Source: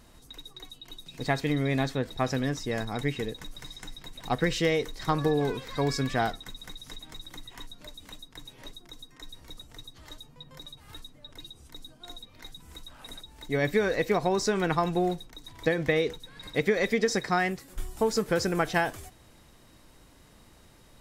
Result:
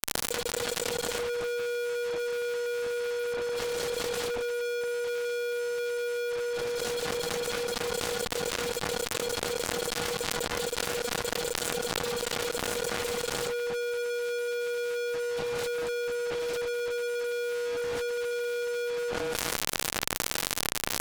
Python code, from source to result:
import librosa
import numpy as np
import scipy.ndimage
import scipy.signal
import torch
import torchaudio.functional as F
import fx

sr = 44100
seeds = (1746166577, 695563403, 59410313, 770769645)

p1 = fx.low_shelf_res(x, sr, hz=210.0, db=-6.0, q=1.5)
p2 = np.abs(p1)
p3 = fx.env_lowpass_down(p2, sr, base_hz=460.0, full_db=-28.0)
p4 = p3 + fx.echo_feedback(p3, sr, ms=231, feedback_pct=27, wet_db=-11.5, dry=0)
p5 = p4 * np.sin(2.0 * np.pi * 480.0 * np.arange(len(p4)) / sr)
p6 = fx.fuzz(p5, sr, gain_db=52.0, gate_db=-50.0)
p7 = fx.env_flatten(p6, sr, amount_pct=100)
y = p7 * librosa.db_to_amplitude(-17.5)